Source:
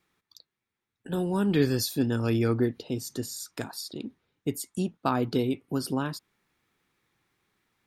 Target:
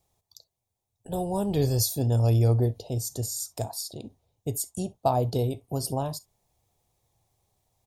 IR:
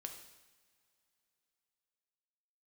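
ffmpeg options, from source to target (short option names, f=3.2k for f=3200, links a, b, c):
-filter_complex "[0:a]firequalizer=gain_entry='entry(100,0);entry(170,-13);entry(270,-19);entry(670,-1);entry(1400,-28);entry(3200,-16);entry(6500,-5)':delay=0.05:min_phase=1,asplit=2[a][b];[1:a]atrim=start_sample=2205,atrim=end_sample=3087[c];[b][c]afir=irnorm=-1:irlink=0,volume=-2dB[d];[a][d]amix=inputs=2:normalize=0,volume=8dB"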